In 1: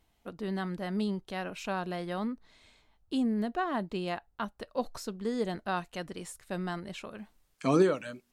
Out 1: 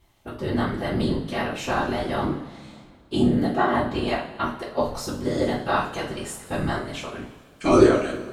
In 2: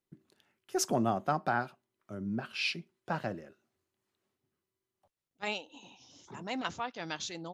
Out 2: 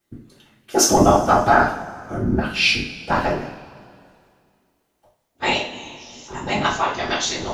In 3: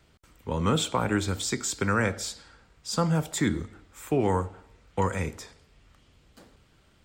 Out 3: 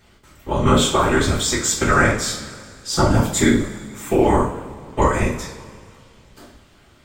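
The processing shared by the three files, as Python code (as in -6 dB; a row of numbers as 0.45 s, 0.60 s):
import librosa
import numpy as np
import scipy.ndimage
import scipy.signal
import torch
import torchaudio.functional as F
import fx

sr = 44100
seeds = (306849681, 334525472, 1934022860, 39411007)

y = fx.whisperise(x, sr, seeds[0])
y = fx.rev_double_slope(y, sr, seeds[1], early_s=0.38, late_s=2.2, knee_db=-18, drr_db=-3.5)
y = librosa.util.normalize(y) * 10.0 ** (-1.5 / 20.0)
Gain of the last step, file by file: +4.5 dB, +11.0 dB, +5.0 dB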